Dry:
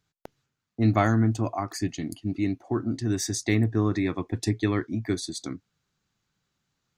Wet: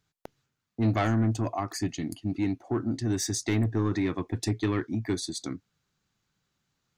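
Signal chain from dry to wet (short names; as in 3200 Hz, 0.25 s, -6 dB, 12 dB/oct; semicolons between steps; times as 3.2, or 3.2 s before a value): soft clip -18.5 dBFS, distortion -13 dB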